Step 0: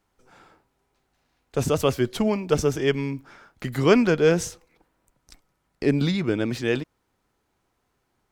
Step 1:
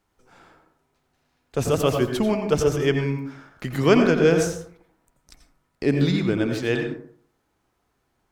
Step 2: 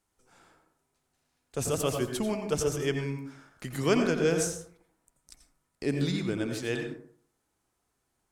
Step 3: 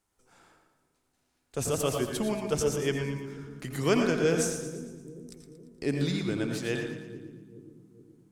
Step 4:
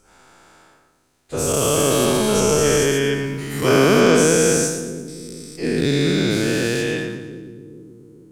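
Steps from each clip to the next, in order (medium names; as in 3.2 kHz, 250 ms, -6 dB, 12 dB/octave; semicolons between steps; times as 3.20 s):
plate-style reverb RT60 0.56 s, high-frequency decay 0.4×, pre-delay 75 ms, DRR 4.5 dB
peaking EQ 9.1 kHz +12 dB 1.3 oct; trim -8.5 dB
two-band feedback delay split 380 Hz, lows 423 ms, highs 115 ms, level -10.5 dB
every event in the spectrogram widened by 480 ms; trim +4 dB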